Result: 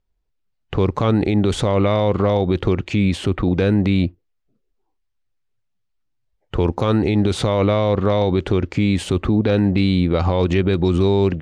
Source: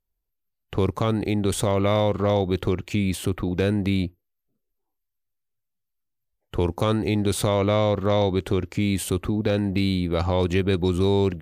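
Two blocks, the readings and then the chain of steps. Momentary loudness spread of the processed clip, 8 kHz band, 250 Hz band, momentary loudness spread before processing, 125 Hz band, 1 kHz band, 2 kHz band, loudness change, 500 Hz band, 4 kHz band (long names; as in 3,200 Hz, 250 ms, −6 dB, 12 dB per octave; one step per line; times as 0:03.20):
4 LU, −3.5 dB, +6.0 dB, 5 LU, +5.5 dB, +3.5 dB, +4.0 dB, +5.0 dB, +4.0 dB, +2.5 dB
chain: brickwall limiter −17 dBFS, peak gain reduction 6 dB
high-frequency loss of the air 110 metres
level +8.5 dB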